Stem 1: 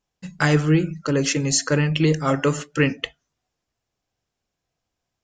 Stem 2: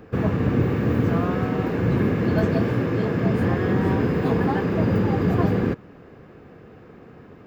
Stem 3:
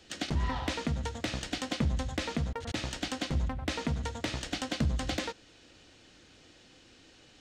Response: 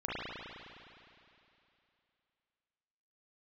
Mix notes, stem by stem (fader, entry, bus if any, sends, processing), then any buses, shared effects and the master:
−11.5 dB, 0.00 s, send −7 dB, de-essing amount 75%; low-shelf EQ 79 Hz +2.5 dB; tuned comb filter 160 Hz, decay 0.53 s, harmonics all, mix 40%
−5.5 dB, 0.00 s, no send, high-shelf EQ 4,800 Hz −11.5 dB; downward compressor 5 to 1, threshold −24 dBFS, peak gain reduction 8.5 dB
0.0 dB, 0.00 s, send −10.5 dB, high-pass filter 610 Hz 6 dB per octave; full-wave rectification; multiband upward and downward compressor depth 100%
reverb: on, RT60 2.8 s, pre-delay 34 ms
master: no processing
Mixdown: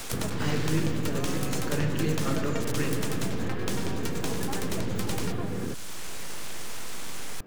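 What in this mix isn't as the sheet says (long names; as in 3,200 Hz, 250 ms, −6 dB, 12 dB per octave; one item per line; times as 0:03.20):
stem 2: missing high-shelf EQ 4,800 Hz −11.5 dB
master: extra high-shelf EQ 7,200 Hz +8.5 dB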